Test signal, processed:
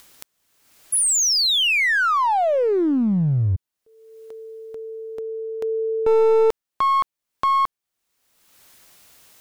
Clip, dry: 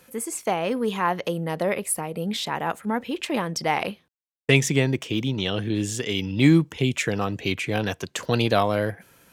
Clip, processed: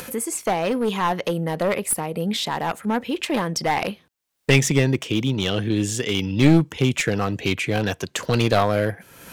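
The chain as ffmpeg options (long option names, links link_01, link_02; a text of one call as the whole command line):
ffmpeg -i in.wav -af "aeval=exprs='clip(val(0),-1,0.0944)':channel_layout=same,acompressor=mode=upward:threshold=-28dB:ratio=2.5,volume=3.5dB" out.wav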